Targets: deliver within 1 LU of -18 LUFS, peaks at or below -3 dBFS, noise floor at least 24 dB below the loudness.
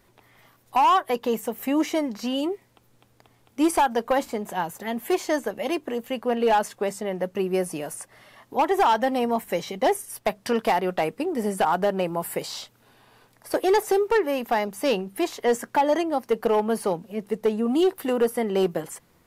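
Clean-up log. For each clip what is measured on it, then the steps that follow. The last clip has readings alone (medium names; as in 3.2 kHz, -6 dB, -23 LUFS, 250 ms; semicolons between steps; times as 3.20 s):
clipped samples 1.0%; clipping level -14.5 dBFS; loudness -24.5 LUFS; peak level -14.5 dBFS; loudness target -18.0 LUFS
-> clip repair -14.5 dBFS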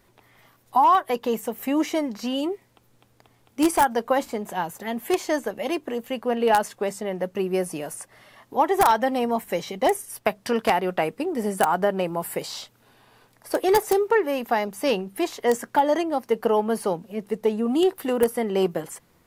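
clipped samples 0.0%; loudness -24.0 LUFS; peak level -5.5 dBFS; loudness target -18.0 LUFS
-> trim +6 dB; peak limiter -3 dBFS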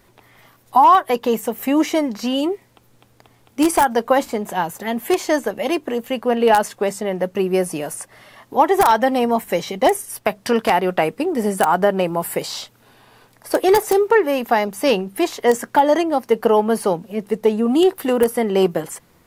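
loudness -18.5 LUFS; peak level -3.0 dBFS; noise floor -55 dBFS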